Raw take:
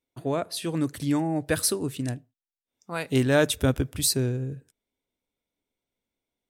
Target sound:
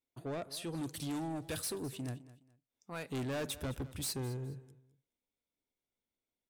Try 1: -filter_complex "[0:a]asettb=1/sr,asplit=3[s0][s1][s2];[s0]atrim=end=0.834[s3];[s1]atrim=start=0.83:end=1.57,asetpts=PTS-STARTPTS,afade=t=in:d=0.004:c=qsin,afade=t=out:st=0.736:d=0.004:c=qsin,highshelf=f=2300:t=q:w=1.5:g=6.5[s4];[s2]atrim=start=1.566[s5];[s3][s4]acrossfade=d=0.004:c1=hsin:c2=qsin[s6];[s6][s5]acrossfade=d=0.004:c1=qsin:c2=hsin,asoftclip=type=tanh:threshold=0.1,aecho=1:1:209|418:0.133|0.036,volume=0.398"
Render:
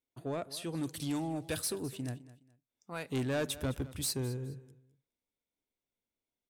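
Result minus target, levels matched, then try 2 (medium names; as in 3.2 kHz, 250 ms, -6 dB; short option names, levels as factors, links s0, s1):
saturation: distortion -5 dB
-filter_complex "[0:a]asettb=1/sr,asplit=3[s0][s1][s2];[s0]atrim=end=0.834[s3];[s1]atrim=start=0.83:end=1.57,asetpts=PTS-STARTPTS,afade=t=in:d=0.004:c=qsin,afade=t=out:st=0.736:d=0.004:c=qsin,highshelf=f=2300:t=q:w=1.5:g=6.5[s4];[s2]atrim=start=1.566[s5];[s3][s4]acrossfade=d=0.004:c1=hsin:c2=qsin[s6];[s6][s5]acrossfade=d=0.004:c1=qsin:c2=hsin,asoftclip=type=tanh:threshold=0.0473,aecho=1:1:209|418:0.133|0.036,volume=0.398"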